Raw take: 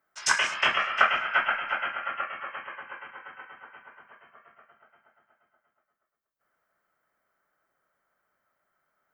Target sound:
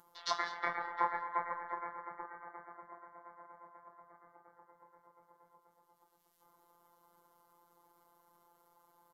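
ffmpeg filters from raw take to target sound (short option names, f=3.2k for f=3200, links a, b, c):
-af "bandreject=f=3.6k:w=7.5,acompressor=mode=upward:threshold=-39dB:ratio=2.5,asetrate=30296,aresample=44100,atempo=1.45565,afftfilt=real='hypot(re,im)*cos(PI*b)':imag='0':win_size=1024:overlap=0.75,aecho=1:1:211:0.112,volume=-8dB"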